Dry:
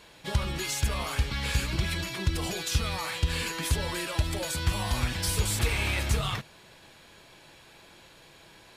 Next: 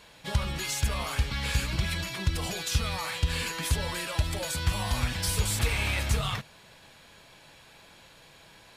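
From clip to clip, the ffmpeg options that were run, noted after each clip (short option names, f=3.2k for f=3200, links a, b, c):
-af "equalizer=f=350:t=o:w=0.39:g=-6.5"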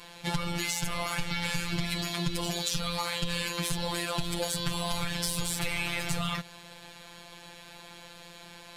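-filter_complex "[0:a]afftfilt=real='hypot(re,im)*cos(PI*b)':imag='0':win_size=1024:overlap=0.75,asplit=2[a][b];[b]asoftclip=type=tanh:threshold=-23.5dB,volume=-9.5dB[c];[a][c]amix=inputs=2:normalize=0,acompressor=threshold=-31dB:ratio=6,volume=6dB"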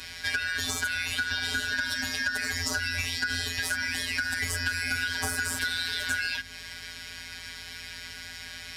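-filter_complex "[0:a]afftfilt=real='real(if(lt(b,272),68*(eq(floor(b/68),0)*3+eq(floor(b/68),1)*0+eq(floor(b/68),2)*1+eq(floor(b/68),3)*2)+mod(b,68),b),0)':imag='imag(if(lt(b,272),68*(eq(floor(b/68),0)*3+eq(floor(b/68),1)*0+eq(floor(b/68),2)*1+eq(floor(b/68),3)*2)+mod(b,68),b),0)':win_size=2048:overlap=0.75,acrossover=split=310[a][b];[b]acompressor=threshold=-38dB:ratio=2[c];[a][c]amix=inputs=2:normalize=0,aeval=exprs='val(0)+0.000794*(sin(2*PI*50*n/s)+sin(2*PI*2*50*n/s)/2+sin(2*PI*3*50*n/s)/3+sin(2*PI*4*50*n/s)/4+sin(2*PI*5*50*n/s)/5)':c=same,volume=7dB"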